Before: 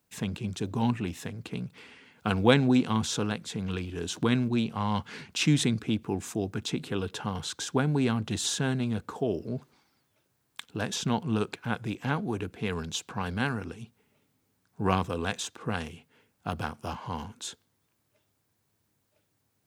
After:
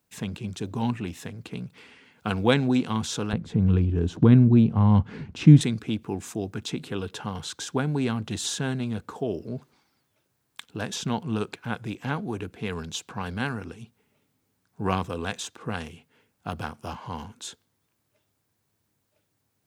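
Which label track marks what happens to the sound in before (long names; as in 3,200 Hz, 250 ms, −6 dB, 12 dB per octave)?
3.330000	5.610000	spectral tilt −4.5 dB per octave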